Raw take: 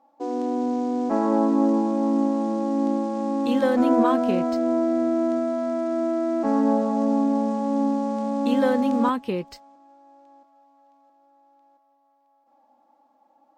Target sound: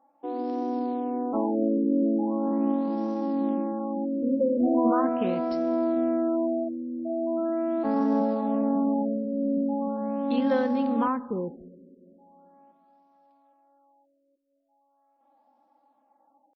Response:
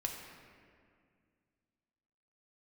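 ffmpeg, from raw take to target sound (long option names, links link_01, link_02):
-filter_complex "[0:a]atempo=0.82,asplit=2[link_01][link_02];[1:a]atrim=start_sample=2205[link_03];[link_02][link_03]afir=irnorm=-1:irlink=0,volume=-11.5dB[link_04];[link_01][link_04]amix=inputs=2:normalize=0,afftfilt=real='re*lt(b*sr/1024,570*pow(6000/570,0.5+0.5*sin(2*PI*0.4*pts/sr)))':imag='im*lt(b*sr/1024,570*pow(6000/570,0.5+0.5*sin(2*PI*0.4*pts/sr)))':win_size=1024:overlap=0.75,volume=-5.5dB"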